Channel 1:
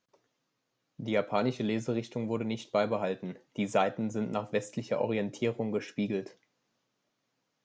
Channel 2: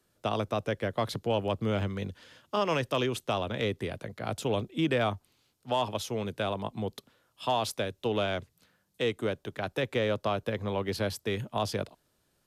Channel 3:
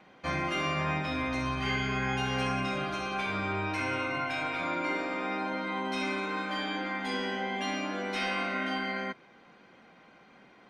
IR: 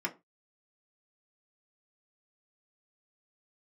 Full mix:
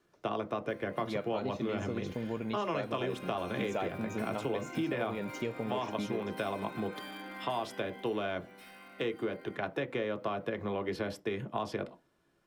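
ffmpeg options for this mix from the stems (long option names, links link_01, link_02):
-filter_complex "[0:a]volume=-2dB[link_01];[1:a]lowpass=frequency=1900:poles=1,volume=-0.5dB,asplit=2[link_02][link_03];[link_03]volume=-5.5dB[link_04];[2:a]acompressor=threshold=-45dB:ratio=2.5,asoftclip=type=hard:threshold=-36.5dB,aexciter=amount=5:drive=8.8:freq=9000,adelay=450,volume=-1dB,afade=type=in:start_time=2.9:duration=0.29:silence=0.298538,afade=type=out:start_time=7.5:duration=0.76:silence=0.334965[link_05];[3:a]atrim=start_sample=2205[link_06];[link_04][link_06]afir=irnorm=-1:irlink=0[link_07];[link_01][link_02][link_05][link_07]amix=inputs=4:normalize=0,acompressor=threshold=-31dB:ratio=4"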